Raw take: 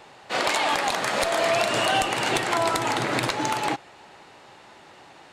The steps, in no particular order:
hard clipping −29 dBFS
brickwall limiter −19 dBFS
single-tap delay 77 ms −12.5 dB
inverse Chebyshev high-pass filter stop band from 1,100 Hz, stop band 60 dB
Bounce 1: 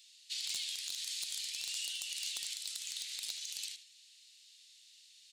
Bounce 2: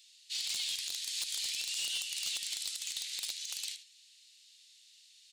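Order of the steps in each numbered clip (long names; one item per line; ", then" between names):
brickwall limiter, then inverse Chebyshev high-pass filter, then hard clipping, then single-tap delay
inverse Chebyshev high-pass filter, then brickwall limiter, then single-tap delay, then hard clipping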